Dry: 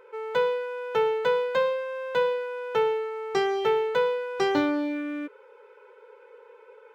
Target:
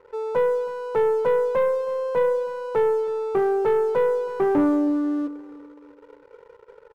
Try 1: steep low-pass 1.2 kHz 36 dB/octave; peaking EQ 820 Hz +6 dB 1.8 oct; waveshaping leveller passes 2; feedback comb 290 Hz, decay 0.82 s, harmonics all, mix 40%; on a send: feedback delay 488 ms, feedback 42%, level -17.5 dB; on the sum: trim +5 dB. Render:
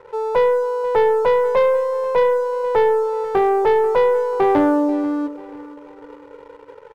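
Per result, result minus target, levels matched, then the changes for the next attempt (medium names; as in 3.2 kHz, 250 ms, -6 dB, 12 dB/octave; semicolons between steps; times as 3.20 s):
echo 167 ms late; 1 kHz band +4.0 dB
change: feedback delay 321 ms, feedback 42%, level -17.5 dB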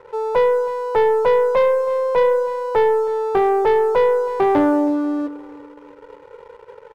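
1 kHz band +3.5 dB
change: peaking EQ 820 Hz -4 dB 1.8 oct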